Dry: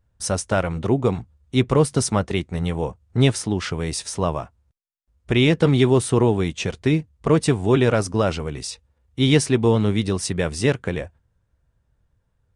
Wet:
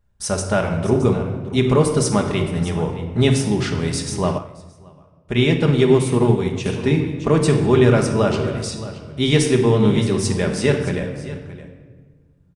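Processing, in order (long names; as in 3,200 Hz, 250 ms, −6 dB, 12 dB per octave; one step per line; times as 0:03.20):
single-tap delay 620 ms −15.5 dB
rectangular room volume 1,400 cubic metres, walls mixed, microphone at 1.3 metres
0:04.38–0:06.66: expander for the loud parts 1.5 to 1, over −32 dBFS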